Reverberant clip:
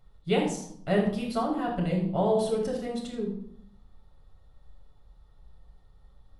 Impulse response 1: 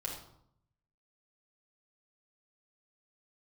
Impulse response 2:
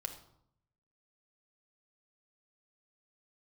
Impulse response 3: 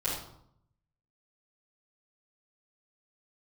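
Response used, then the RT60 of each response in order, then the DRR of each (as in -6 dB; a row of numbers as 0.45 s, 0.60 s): 1; 0.70 s, 0.70 s, 0.70 s; -2.5 dB, 5.0 dB, -11.0 dB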